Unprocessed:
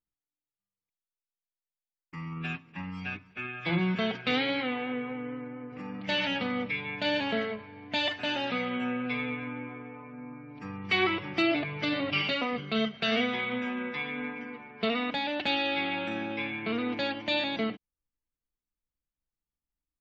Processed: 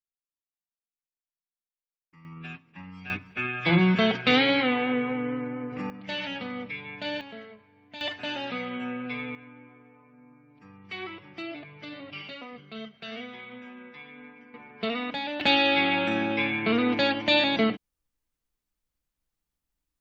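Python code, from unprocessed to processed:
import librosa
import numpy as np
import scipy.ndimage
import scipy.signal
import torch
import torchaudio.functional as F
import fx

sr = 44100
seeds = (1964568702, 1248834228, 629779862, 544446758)

y = fx.gain(x, sr, db=fx.steps((0.0, -15.0), (2.25, -5.5), (3.1, 7.0), (5.9, -4.0), (7.21, -13.0), (8.01, -2.0), (9.35, -11.5), (14.54, -1.0), (15.41, 7.0)))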